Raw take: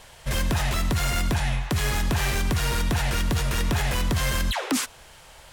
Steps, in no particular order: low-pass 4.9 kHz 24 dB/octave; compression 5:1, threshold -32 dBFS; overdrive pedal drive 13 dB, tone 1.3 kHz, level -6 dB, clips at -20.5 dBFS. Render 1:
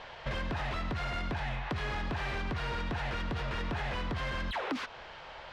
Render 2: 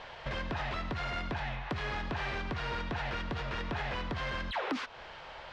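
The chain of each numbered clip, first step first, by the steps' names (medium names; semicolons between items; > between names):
low-pass > overdrive pedal > compression; compression > low-pass > overdrive pedal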